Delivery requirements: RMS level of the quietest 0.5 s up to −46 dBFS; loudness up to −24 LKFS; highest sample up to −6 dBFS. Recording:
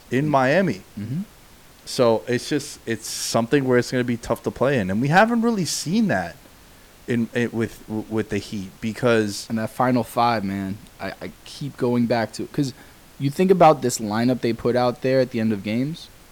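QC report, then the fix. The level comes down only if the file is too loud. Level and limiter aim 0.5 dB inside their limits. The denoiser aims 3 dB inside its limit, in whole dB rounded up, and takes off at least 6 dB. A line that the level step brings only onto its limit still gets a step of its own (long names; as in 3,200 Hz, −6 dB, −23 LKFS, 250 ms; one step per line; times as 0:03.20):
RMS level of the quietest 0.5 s −48 dBFS: in spec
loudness −22.0 LKFS: out of spec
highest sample −5.0 dBFS: out of spec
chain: level −2.5 dB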